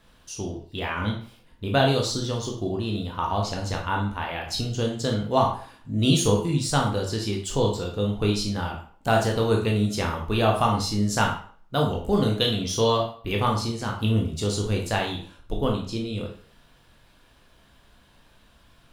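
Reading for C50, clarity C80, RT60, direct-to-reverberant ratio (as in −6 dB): 6.0 dB, 10.5 dB, 0.50 s, 0.0 dB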